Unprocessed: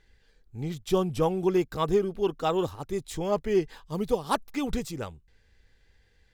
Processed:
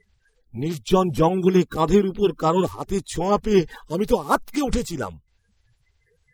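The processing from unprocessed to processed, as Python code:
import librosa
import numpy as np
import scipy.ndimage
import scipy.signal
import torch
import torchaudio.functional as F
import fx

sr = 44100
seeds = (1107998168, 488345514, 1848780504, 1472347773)

y = fx.spec_quant(x, sr, step_db=30)
y = fx.noise_reduce_blind(y, sr, reduce_db=12)
y = y * librosa.db_to_amplitude(7.5)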